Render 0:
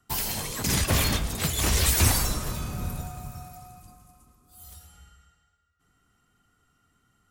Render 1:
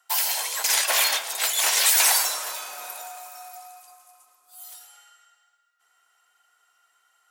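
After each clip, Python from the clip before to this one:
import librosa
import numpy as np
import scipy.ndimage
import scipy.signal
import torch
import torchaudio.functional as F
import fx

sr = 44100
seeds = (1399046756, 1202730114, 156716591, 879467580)

y = scipy.signal.sosfilt(scipy.signal.butter(4, 670.0, 'highpass', fs=sr, output='sos'), x)
y = fx.notch(y, sr, hz=1200.0, q=9.0)
y = y * 10.0 ** (6.0 / 20.0)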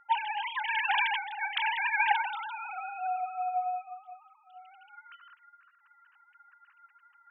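y = fx.sine_speech(x, sr)
y = y * 10.0 ** (-6.5 / 20.0)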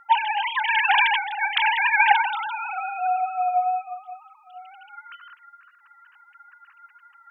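y = fx.wow_flutter(x, sr, seeds[0], rate_hz=2.1, depth_cents=17.0)
y = y * 10.0 ** (9.0 / 20.0)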